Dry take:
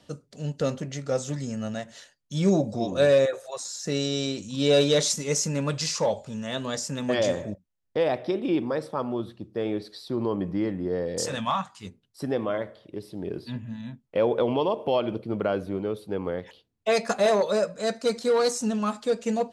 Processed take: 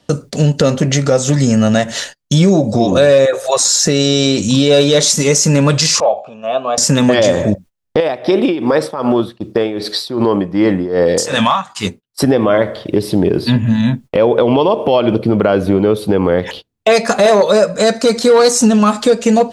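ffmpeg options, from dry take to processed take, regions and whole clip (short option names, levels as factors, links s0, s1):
-filter_complex "[0:a]asettb=1/sr,asplit=3[s0][s1][s2];[s0]atrim=end=6.004[s3];[s1]atrim=start=6:end=6.78,asetpts=PTS-STARTPTS,afade=t=in:d=0.004:c=qsin,afade=t=out:st=0.776:d=0.004:c=qsin,asplit=3[s4][s5][s6];[s4]bandpass=f=730:t=q:w=8,volume=1[s7];[s5]bandpass=f=1090:t=q:w=8,volume=0.501[s8];[s6]bandpass=f=2440:t=q:w=8,volume=0.355[s9];[s7][s8][s9]amix=inputs=3:normalize=0,highshelf=f=4000:g=-9[s10];[s2]atrim=start=6.776[s11];[s3][s10]acrossfade=d=0.004:c1=hsin:c2=qsin[s12];[s12][s11]acrossfade=d=0.004:c1=qsin:c2=hsin,asettb=1/sr,asplit=3[s13][s14][s15];[s13]atrim=end=8.004[s16];[s14]atrim=start=8:end=12.24,asetpts=PTS-STARTPTS,afade=t=in:d=0.004:c=qsin,afade=t=out:st=4.236:d=0.004:c=qsin,lowshelf=f=230:g=-8.5,acompressor=threshold=0.0398:ratio=3:attack=3.2:release=140:knee=1:detection=peak,tremolo=f=2.6:d=0.82[s17];[s15]atrim=start=12.236[s18];[s16][s17]acrossfade=d=0.004:c1=hsin:c2=qsin[s19];[s19][s18]acrossfade=d=0.004:c1=qsin:c2=hsin,acompressor=threshold=0.02:ratio=4,agate=range=0.0794:threshold=0.00178:ratio=16:detection=peak,alimiter=level_in=21.1:limit=0.891:release=50:level=0:latency=1,volume=0.891"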